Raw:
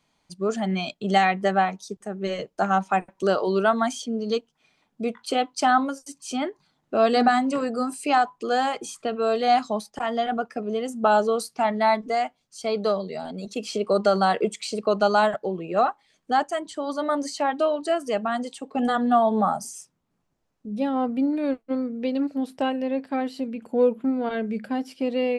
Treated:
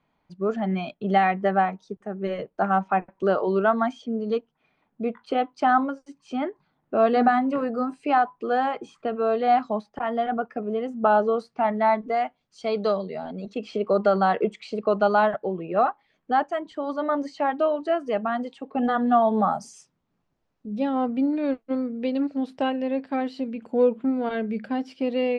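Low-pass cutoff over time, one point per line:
11.96 s 2 kHz
12.87 s 4.5 kHz
13.17 s 2.4 kHz
18.92 s 2.4 kHz
19.67 s 4.7 kHz

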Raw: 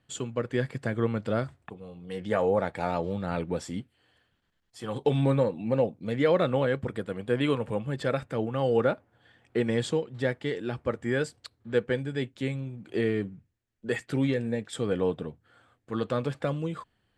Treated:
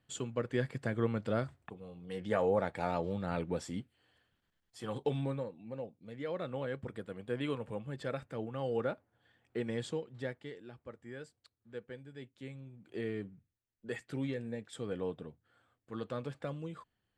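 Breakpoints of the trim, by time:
4.89 s -5 dB
5.56 s -17 dB
6.15 s -17 dB
6.87 s -10 dB
10.17 s -10 dB
10.73 s -19 dB
12.00 s -19 dB
13.14 s -10.5 dB

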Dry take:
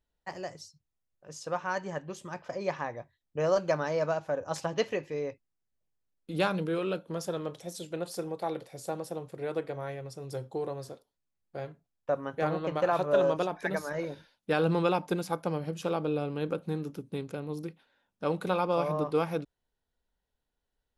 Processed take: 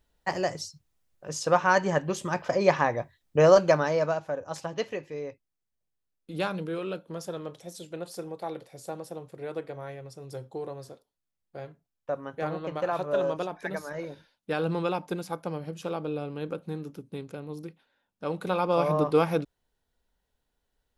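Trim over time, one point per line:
3.39 s +10.5 dB
4.47 s -2 dB
18.27 s -2 dB
18.93 s +5.5 dB

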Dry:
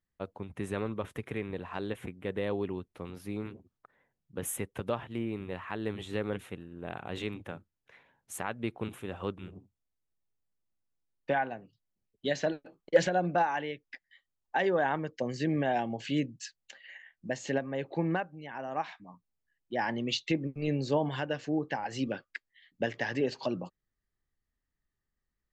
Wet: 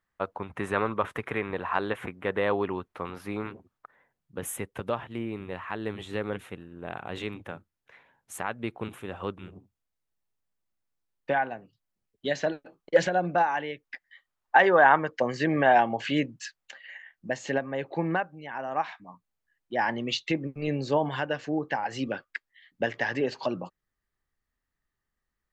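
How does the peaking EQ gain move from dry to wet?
peaking EQ 1.2 kHz 2.3 oct
3.31 s +14.5 dB
4.40 s +4.5 dB
13.64 s +4.5 dB
14.61 s +15 dB
16.21 s +15 dB
16.89 s +6.5 dB

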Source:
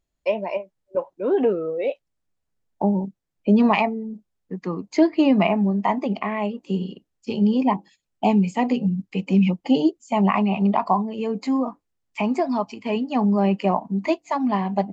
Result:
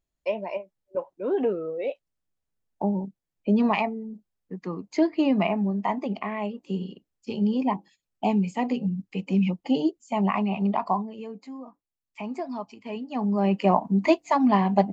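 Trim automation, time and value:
10.95 s -5 dB
11.54 s -18 dB
12.38 s -10 dB
13.00 s -10 dB
13.80 s +2 dB

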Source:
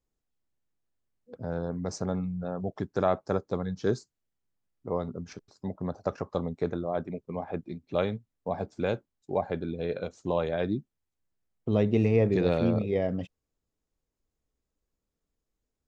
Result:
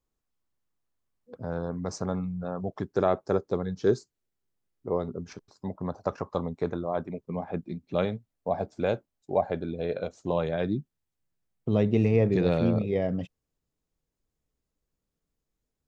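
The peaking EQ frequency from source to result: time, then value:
peaking EQ +5.5 dB 0.54 oct
1.1 kHz
from 2.84 s 390 Hz
from 5.30 s 1 kHz
from 7.26 s 190 Hz
from 8.05 s 650 Hz
from 10.31 s 150 Hz

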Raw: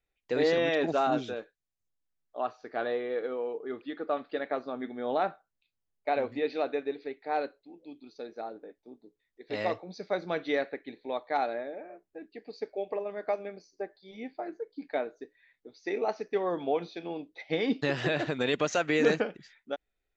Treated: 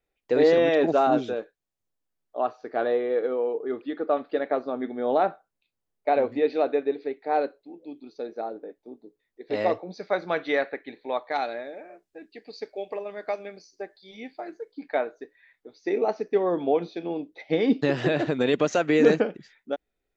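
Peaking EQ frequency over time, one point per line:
peaking EQ +7.5 dB 2.8 oct
440 Hz
from 9.98 s 1.2 kHz
from 11.32 s 5.3 kHz
from 14.72 s 1.1 kHz
from 15.74 s 300 Hz

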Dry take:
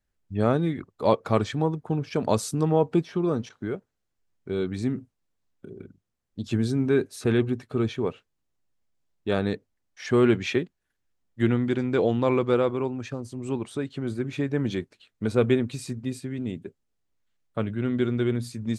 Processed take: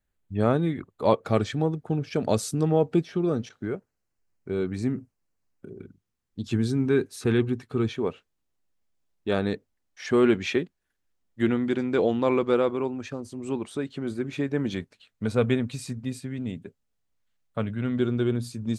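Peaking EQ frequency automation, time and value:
peaking EQ -9 dB 0.3 oct
5.3 kHz
from 1.24 s 1 kHz
from 3.65 s 3.5 kHz
from 5.79 s 610 Hz
from 7.93 s 120 Hz
from 14.73 s 350 Hz
from 17.98 s 2 kHz

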